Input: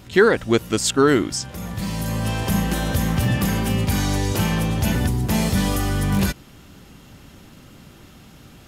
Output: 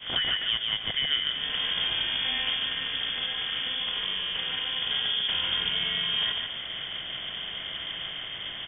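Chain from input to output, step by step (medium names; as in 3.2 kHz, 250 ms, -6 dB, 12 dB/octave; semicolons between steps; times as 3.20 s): spectral levelling over time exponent 0.6; high-pass 96 Hz; expander -25 dBFS; compression 10:1, threshold -26 dBFS, peak gain reduction 18 dB; 2.54–4.91 s: AM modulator 250 Hz, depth 50%; feedback delay 147 ms, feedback 32%, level -3.5 dB; frequency inversion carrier 3.4 kHz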